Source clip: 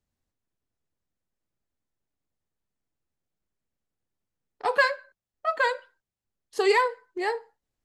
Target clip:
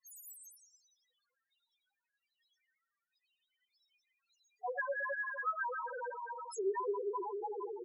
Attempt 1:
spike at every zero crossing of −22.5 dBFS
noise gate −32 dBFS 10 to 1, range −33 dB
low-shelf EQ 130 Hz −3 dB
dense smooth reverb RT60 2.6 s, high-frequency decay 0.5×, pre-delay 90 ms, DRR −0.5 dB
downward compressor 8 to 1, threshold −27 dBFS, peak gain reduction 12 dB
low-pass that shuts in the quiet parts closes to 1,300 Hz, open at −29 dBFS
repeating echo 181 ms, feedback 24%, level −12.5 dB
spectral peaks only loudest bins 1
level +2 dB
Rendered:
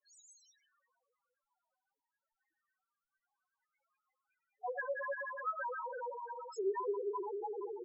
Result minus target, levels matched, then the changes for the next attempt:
2,000 Hz band −3.0 dB
add after downward compressor: high-shelf EQ 2,200 Hz +7.5 dB

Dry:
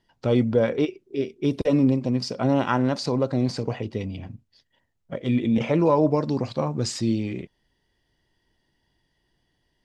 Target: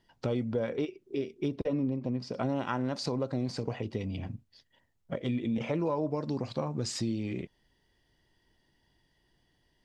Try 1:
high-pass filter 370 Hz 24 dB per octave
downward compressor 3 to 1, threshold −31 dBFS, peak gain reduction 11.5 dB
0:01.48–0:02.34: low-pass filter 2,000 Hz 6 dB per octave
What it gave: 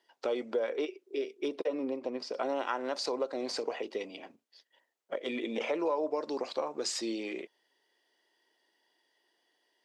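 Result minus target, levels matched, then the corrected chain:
500 Hz band +3.0 dB
downward compressor 3 to 1, threshold −31 dBFS, peak gain reduction 12.5 dB
0:01.48–0:02.34: low-pass filter 2,000 Hz 6 dB per octave

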